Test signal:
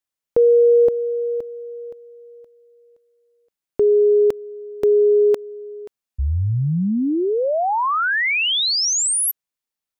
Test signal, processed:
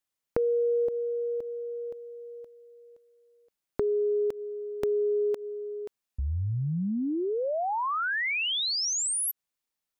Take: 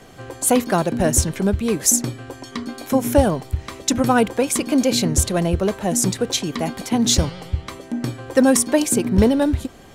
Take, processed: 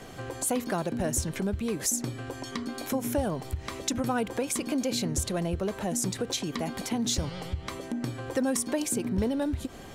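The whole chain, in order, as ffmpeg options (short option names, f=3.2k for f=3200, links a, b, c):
-af "acompressor=threshold=-36dB:ratio=2:attack=11:release=134:knee=1:detection=peak"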